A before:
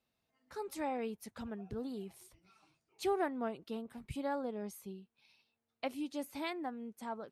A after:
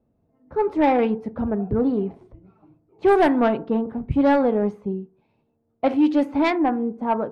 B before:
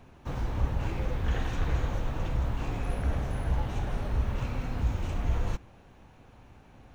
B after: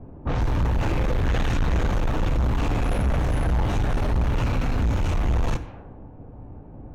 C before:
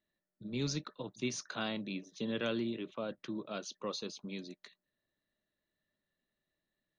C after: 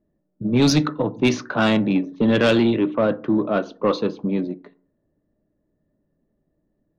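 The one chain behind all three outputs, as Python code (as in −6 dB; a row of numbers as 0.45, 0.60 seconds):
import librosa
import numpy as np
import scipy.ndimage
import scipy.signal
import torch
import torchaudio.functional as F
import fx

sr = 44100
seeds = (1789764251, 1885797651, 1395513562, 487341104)

y = fx.rev_fdn(x, sr, rt60_s=0.48, lf_ratio=1.1, hf_ratio=0.5, size_ms=20.0, drr_db=12.5)
y = fx.env_lowpass(y, sr, base_hz=450.0, full_db=-26.5)
y = 10.0 ** (-31.0 / 20.0) * np.tanh(y / 10.0 ** (-31.0 / 20.0))
y = y * 10.0 ** (-22 / 20.0) / np.sqrt(np.mean(np.square(y)))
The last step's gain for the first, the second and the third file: +21.0, +13.0, +21.5 decibels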